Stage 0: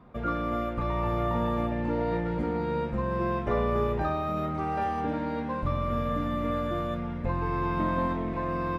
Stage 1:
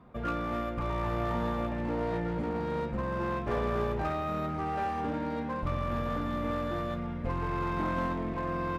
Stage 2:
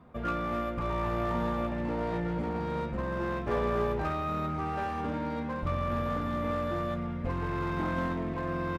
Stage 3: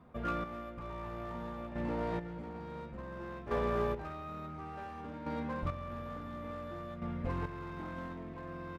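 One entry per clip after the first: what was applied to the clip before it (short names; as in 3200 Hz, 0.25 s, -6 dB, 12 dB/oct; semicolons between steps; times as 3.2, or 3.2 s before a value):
one-sided clip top -28 dBFS; gain -2 dB
doubler 12 ms -10.5 dB
chopper 0.57 Hz, depth 60%, duty 25%; gain -3.5 dB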